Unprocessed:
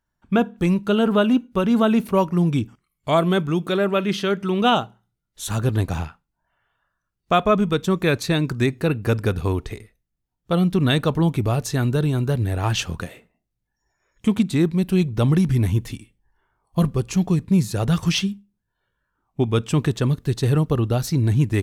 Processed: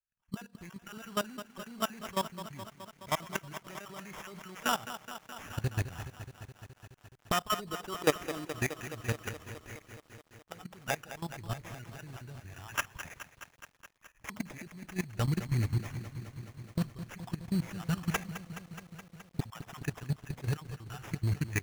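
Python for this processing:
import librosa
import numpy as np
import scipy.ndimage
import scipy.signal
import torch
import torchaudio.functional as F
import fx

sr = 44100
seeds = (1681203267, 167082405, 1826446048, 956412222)

y = fx.spec_dropout(x, sr, seeds[0], share_pct=21)
y = fx.recorder_agc(y, sr, target_db=-11.5, rise_db_per_s=8.1, max_gain_db=30)
y = fx.graphic_eq(y, sr, hz=(250, 500, 2000, 8000), db=(-5, -6, 8, 6))
y = fx.level_steps(y, sr, step_db=19)
y = fx.spec_box(y, sr, start_s=7.56, length_s=0.92, low_hz=250.0, high_hz=1500.0, gain_db=12)
y = fx.low_shelf(y, sr, hz=410.0, db=-9.5, at=(9.16, 11.29))
y = fx.sample_hold(y, sr, seeds[1], rate_hz=4300.0, jitter_pct=0)
y = fx.echo_crushed(y, sr, ms=211, feedback_pct=80, bits=8, wet_db=-12.0)
y = y * 10.0 ** (-8.5 / 20.0)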